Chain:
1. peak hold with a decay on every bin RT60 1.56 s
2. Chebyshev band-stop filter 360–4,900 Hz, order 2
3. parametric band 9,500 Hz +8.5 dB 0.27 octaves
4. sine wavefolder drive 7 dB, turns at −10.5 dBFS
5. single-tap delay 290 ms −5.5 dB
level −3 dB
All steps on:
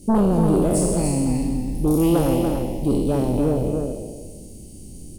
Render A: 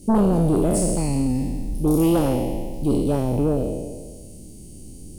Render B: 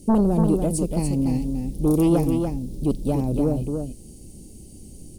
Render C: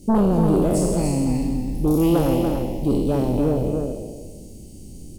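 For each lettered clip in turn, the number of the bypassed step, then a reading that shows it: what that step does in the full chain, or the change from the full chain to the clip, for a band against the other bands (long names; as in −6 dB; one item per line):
5, change in momentary loudness spread −1 LU
1, 8 kHz band −3.5 dB
3, 8 kHz band −4.0 dB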